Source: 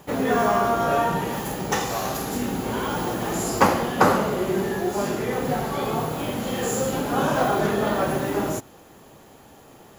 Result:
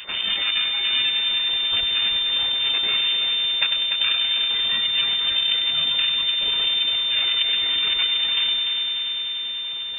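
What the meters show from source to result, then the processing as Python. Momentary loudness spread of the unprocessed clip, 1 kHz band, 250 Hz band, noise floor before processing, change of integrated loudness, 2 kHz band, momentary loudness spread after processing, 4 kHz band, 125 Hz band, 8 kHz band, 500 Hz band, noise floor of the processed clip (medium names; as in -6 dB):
7 LU, -16.0 dB, under -20 dB, -49 dBFS, +5.0 dB, +3.5 dB, 3 LU, +21.5 dB, under -15 dB, under -40 dB, -21.5 dB, -29 dBFS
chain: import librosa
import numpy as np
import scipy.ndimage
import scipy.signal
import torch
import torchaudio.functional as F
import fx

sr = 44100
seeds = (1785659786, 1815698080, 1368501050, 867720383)

y = fx.spec_dropout(x, sr, seeds[0], share_pct=36)
y = scipy.signal.sosfilt(scipy.signal.ellip(4, 1.0, 40, 460.0, 'highpass', fs=sr, output='sos'), y)
y = fx.notch(y, sr, hz=1900.0, q=7.9)
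y = fx.dereverb_blind(y, sr, rt60_s=1.9)
y = fx.rider(y, sr, range_db=10, speed_s=0.5)
y = np.maximum(y, 0.0)
y = fx.echo_heads(y, sr, ms=98, heads='first and third', feedback_pct=71, wet_db=-10.5)
y = fx.freq_invert(y, sr, carrier_hz=3600)
y = fx.env_flatten(y, sr, amount_pct=50)
y = F.gain(torch.from_numpy(y), 2.0).numpy()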